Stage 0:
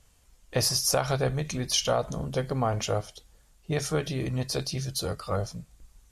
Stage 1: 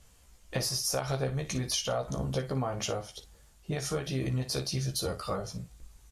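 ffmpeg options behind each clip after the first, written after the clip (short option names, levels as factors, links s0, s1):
-filter_complex "[0:a]acompressor=threshold=0.0282:ratio=6,asplit=2[s0][s1];[s1]aecho=0:1:15|57:0.596|0.251[s2];[s0][s2]amix=inputs=2:normalize=0,volume=1.12"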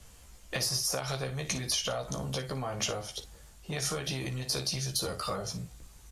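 -filter_complex "[0:a]acrossover=split=82|2200[s0][s1][s2];[s0]acompressor=threshold=0.00158:ratio=4[s3];[s1]acompressor=threshold=0.0141:ratio=4[s4];[s2]acompressor=threshold=0.0178:ratio=4[s5];[s3][s4][s5]amix=inputs=3:normalize=0,acrossover=split=640|2500[s6][s7][s8];[s6]asoftclip=type=tanh:threshold=0.0126[s9];[s9][s7][s8]amix=inputs=3:normalize=0,volume=2"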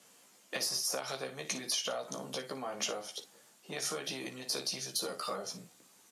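-af "highpass=f=210:w=0.5412,highpass=f=210:w=1.3066,volume=0.708"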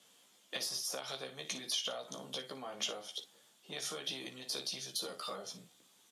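-af "equalizer=f=3400:t=o:w=0.36:g=11,volume=0.531"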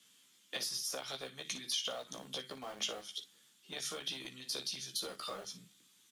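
-filter_complex "[0:a]bandreject=f=50:t=h:w=6,bandreject=f=100:t=h:w=6,bandreject=f=150:t=h:w=6,bandreject=f=200:t=h:w=6,acrossover=split=370|1100[s0][s1][s2];[s1]aeval=exprs='val(0)*gte(abs(val(0)),0.00335)':c=same[s3];[s0][s3][s2]amix=inputs=3:normalize=0"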